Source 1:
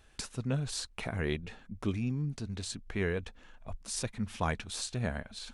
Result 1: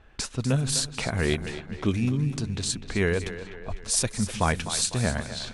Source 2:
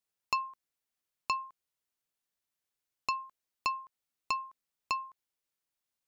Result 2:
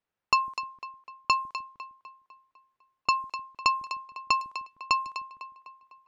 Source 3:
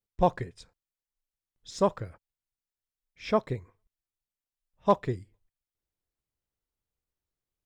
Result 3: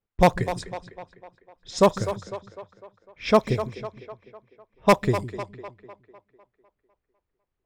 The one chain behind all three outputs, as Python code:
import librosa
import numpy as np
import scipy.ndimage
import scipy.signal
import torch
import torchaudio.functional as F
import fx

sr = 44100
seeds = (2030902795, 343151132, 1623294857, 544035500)

y = 10.0 ** (-14.5 / 20.0) * (np.abs((x / 10.0 ** (-14.5 / 20.0) + 3.0) % 4.0 - 2.0) - 1.0)
y = fx.high_shelf(y, sr, hz=6900.0, db=10.0)
y = fx.echo_split(y, sr, split_hz=310.0, low_ms=153, high_ms=251, feedback_pct=52, wet_db=-11.5)
y = fx.env_lowpass(y, sr, base_hz=1900.0, full_db=-30.0)
y = y * librosa.db_to_amplitude(7.5)